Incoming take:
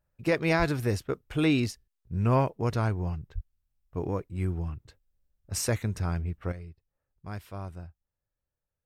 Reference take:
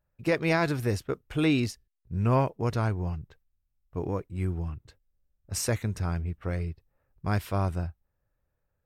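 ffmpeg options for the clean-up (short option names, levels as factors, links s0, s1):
-filter_complex "[0:a]asplit=3[s0][s1][s2];[s0]afade=t=out:st=0.58:d=0.02[s3];[s1]highpass=f=140:w=0.5412,highpass=f=140:w=1.3066,afade=t=in:st=0.58:d=0.02,afade=t=out:st=0.7:d=0.02[s4];[s2]afade=t=in:st=0.7:d=0.02[s5];[s3][s4][s5]amix=inputs=3:normalize=0,asplit=3[s6][s7][s8];[s6]afade=t=out:st=3.34:d=0.02[s9];[s7]highpass=f=140:w=0.5412,highpass=f=140:w=1.3066,afade=t=in:st=3.34:d=0.02,afade=t=out:st=3.46:d=0.02[s10];[s8]afade=t=in:st=3.46:d=0.02[s11];[s9][s10][s11]amix=inputs=3:normalize=0,asetnsamples=n=441:p=0,asendcmd='6.52 volume volume 11dB',volume=1"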